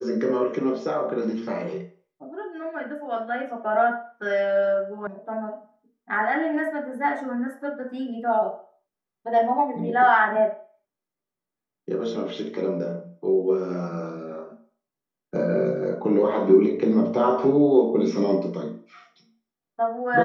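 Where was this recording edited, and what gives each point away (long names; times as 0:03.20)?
0:05.07: cut off before it has died away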